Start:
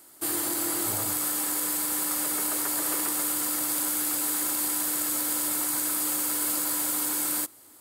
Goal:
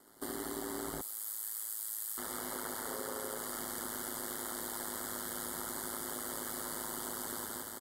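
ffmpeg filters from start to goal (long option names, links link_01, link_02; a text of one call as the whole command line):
ffmpeg -i in.wav -filter_complex "[0:a]asplit=2[link_01][link_02];[link_02]aecho=0:1:169|338|507|676|845|1014|1183:0.708|0.375|0.199|0.105|0.0559|0.0296|0.0157[link_03];[link_01][link_03]amix=inputs=2:normalize=0,asettb=1/sr,asplit=3[link_04][link_05][link_06];[link_04]atrim=end=2.874[link_07];[link_05]atrim=start=2.87:end=3.38,asetpts=PTS-STARTPTS,afade=type=in:duration=0.004:curve=qsin,afade=type=out:start_time=0.506:duration=0.004:curve=qsin,aeval=exprs='val(0)+0.0141*sin(2*PI*480*n/s)':channel_layout=same[link_08];[link_06]atrim=start=3.376[link_09];[link_07][link_08]acrossfade=duration=0.004:curve1=hsin:curve2=qsin[link_10];[link_10][link_09]acrossfade=duration=0.004:curve1=qsin:curve2=hsin,asuperstop=centerf=2500:order=8:qfactor=3,highshelf=frequency=3600:gain=-11,asplit=2[link_11][link_12];[link_12]aecho=0:1:71:0.596[link_13];[link_11][link_13]amix=inputs=2:normalize=0,aeval=exprs='val(0)*sin(2*PI*54*n/s)':channel_layout=same,acompressor=threshold=-37dB:ratio=4,asettb=1/sr,asplit=3[link_14][link_15][link_16];[link_14]atrim=end=1.014[link_17];[link_15]atrim=start=1.01:end=2.18,asetpts=PTS-STARTPTS,afade=type=in:duration=0.004:curve=qsin,afade=type=out:start_time=1.166:duration=0.004:curve=qsin,aderivative[link_18];[link_16]atrim=start=2.176[link_19];[link_17][link_18]acrossfade=duration=0.004:curve1=hsin:curve2=qsin[link_20];[link_20][link_19]acrossfade=duration=0.004:curve1=qsin:curve2=hsin" out.wav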